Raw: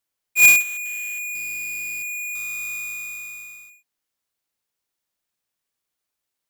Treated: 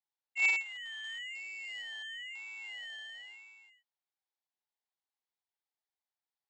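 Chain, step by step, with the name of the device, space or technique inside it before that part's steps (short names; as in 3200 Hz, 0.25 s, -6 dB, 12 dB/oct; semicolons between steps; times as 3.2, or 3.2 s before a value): 1.04–1.82 high shelf 3700 Hz +5.5 dB; voice changer toy (ring modulator with a swept carrier 450 Hz, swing 55%, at 1 Hz; speaker cabinet 420–4700 Hz, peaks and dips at 510 Hz -4 dB, 830 Hz +8 dB, 1300 Hz -4 dB, 2600 Hz -6 dB); gain -8.5 dB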